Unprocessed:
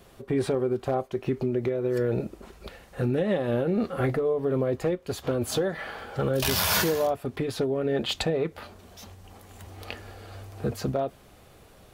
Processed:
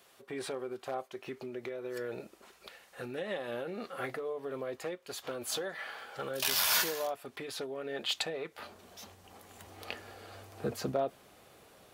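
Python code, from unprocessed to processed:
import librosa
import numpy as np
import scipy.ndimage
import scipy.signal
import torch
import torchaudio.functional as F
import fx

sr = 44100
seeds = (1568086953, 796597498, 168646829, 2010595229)

y = fx.highpass(x, sr, hz=fx.steps((0.0, 1300.0), (8.59, 300.0)), slope=6)
y = F.gain(torch.from_numpy(y), -2.5).numpy()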